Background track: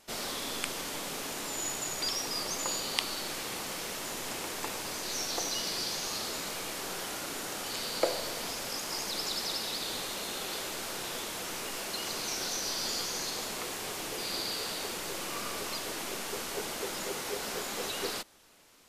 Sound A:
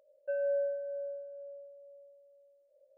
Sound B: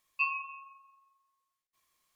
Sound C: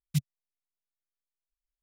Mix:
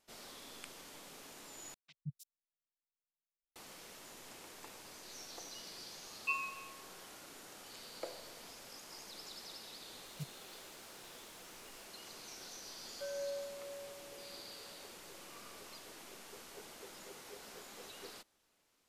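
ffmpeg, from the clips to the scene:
ffmpeg -i bed.wav -i cue0.wav -i cue1.wav -i cue2.wav -filter_complex "[3:a]asplit=2[link_01][link_02];[0:a]volume=-16dB[link_03];[link_01]acrossover=split=400|4400[link_04][link_05][link_06];[link_04]adelay=170[link_07];[link_06]adelay=310[link_08];[link_07][link_05][link_08]amix=inputs=3:normalize=0[link_09];[link_02]aeval=exprs='val(0)+0.5*0.00708*sgn(val(0))':channel_layout=same[link_10];[1:a]highpass=490[link_11];[link_03]asplit=2[link_12][link_13];[link_12]atrim=end=1.744[link_14];[link_09]atrim=end=1.82,asetpts=PTS-STARTPTS,volume=-15.5dB[link_15];[link_13]atrim=start=3.556[link_16];[2:a]atrim=end=2.15,asetpts=PTS-STARTPTS,volume=-5.5dB,afade=type=in:duration=0.004:curve=hsin,afade=type=out:start_time=2.146:duration=0.004:curve=hsin,adelay=6080[link_17];[link_10]atrim=end=1.82,asetpts=PTS-STARTPTS,volume=-17.5dB,afade=type=in:duration=0.004:curve=hsin,afade=type=out:start_time=1.816:duration=0.004:curve=hsin,adelay=10050[link_18];[link_11]atrim=end=2.97,asetpts=PTS-STARTPTS,volume=-8dB,afade=type=in:duration=0.004:curve=hsin,afade=type=out:start_time=2.966:duration=0.004:curve=hsin,adelay=12730[link_19];[link_14][link_15]acrossfade=duration=0.004:curve1=hsin:curve2=hsin[link_20];[link_20][link_16]acrossfade=duration=0.004:curve1=hsin:curve2=hsin[link_21];[link_21][link_17][link_18][link_19]amix=inputs=4:normalize=0" out.wav

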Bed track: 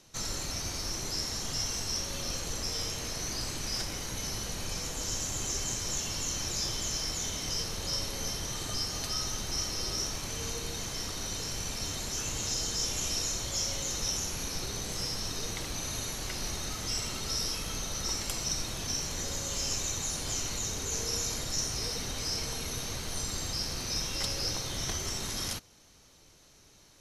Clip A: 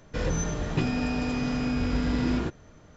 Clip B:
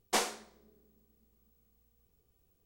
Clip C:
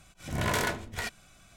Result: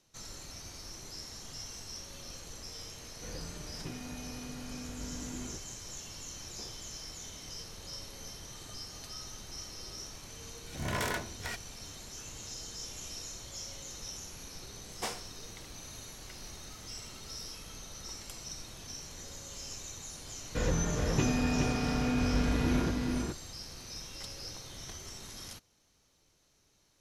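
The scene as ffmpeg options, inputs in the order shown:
ffmpeg -i bed.wav -i cue0.wav -i cue1.wav -i cue2.wav -filter_complex "[1:a]asplit=2[link_01][link_02];[2:a]asplit=2[link_03][link_04];[0:a]volume=-11dB[link_05];[link_03]bandpass=frequency=290:width_type=q:width=1.6:csg=0[link_06];[link_02]aecho=1:1:418:0.596[link_07];[link_01]atrim=end=2.96,asetpts=PTS-STARTPTS,volume=-16.5dB,afade=type=in:duration=0.004:curve=hsin,afade=type=out:start_time=2.956:duration=0.004:curve=hsin,adelay=3080[link_08];[link_06]atrim=end=2.65,asetpts=PTS-STARTPTS,volume=-14.5dB,afade=type=in:duration=0.004:curve=hsin,afade=type=out:start_time=2.646:duration=0.004:curve=hsin,adelay=6450[link_09];[3:a]atrim=end=1.56,asetpts=PTS-STARTPTS,volume=-5dB,afade=type=in:duration=0.004:curve=hsin,afade=type=out:start_time=1.556:duration=0.004:curve=hsin,adelay=10470[link_10];[link_04]atrim=end=2.65,asetpts=PTS-STARTPTS,volume=-7.5dB,afade=type=in:duration=0.004:curve=hsin,afade=type=out:start_time=2.646:duration=0.004:curve=hsin,adelay=14890[link_11];[link_07]atrim=end=2.96,asetpts=PTS-STARTPTS,volume=-2.5dB,afade=type=in:duration=0.004:curve=hsin,afade=type=out:start_time=2.956:duration=0.004:curve=hsin,adelay=20410[link_12];[link_05][link_08][link_09][link_10][link_11][link_12]amix=inputs=6:normalize=0" out.wav

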